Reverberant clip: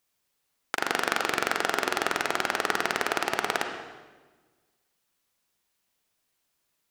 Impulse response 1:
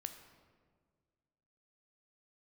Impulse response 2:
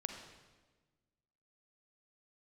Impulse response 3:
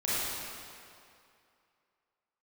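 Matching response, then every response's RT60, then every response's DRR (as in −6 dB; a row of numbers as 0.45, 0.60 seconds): 2; 1.7, 1.3, 2.5 seconds; 7.0, 4.0, −10.5 decibels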